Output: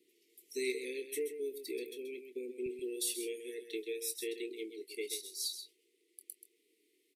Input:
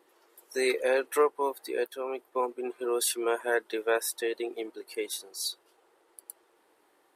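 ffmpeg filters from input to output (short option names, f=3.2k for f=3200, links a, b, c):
-filter_complex "[0:a]asetnsamples=n=441:p=0,asendcmd='2.66 highpass f 290',highpass=130,acompressor=threshold=-29dB:ratio=2.5,asuperstop=centerf=960:order=20:qfactor=0.61,asplit=2[a][b];[b]adelay=24,volume=-11dB[c];[a][c]amix=inputs=2:normalize=0,aecho=1:1:131:0.335,volume=-4dB"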